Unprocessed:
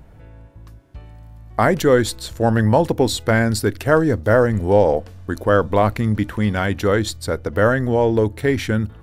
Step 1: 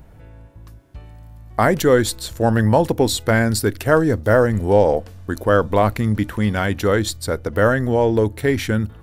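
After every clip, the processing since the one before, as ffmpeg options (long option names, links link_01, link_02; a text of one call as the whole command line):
ffmpeg -i in.wav -af "highshelf=frequency=8700:gain=6.5" out.wav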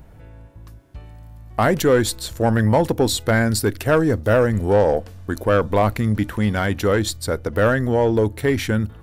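ffmpeg -i in.wav -af "asoftclip=type=tanh:threshold=-7dB" out.wav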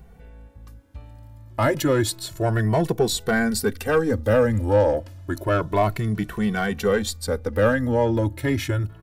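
ffmpeg -i in.wav -filter_complex "[0:a]asplit=2[link_01][link_02];[link_02]adelay=2.2,afreqshift=0.3[link_03];[link_01][link_03]amix=inputs=2:normalize=1" out.wav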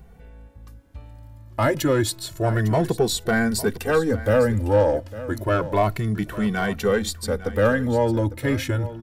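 ffmpeg -i in.wav -af "aecho=1:1:854:0.168" out.wav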